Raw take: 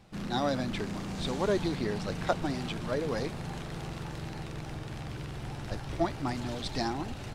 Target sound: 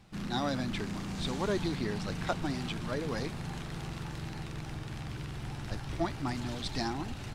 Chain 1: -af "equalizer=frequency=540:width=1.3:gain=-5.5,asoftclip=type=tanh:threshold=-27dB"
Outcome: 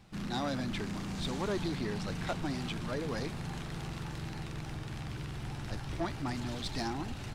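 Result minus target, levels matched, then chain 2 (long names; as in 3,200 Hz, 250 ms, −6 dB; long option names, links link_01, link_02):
soft clipping: distortion +14 dB
-af "equalizer=frequency=540:width=1.3:gain=-5.5,asoftclip=type=tanh:threshold=-17dB"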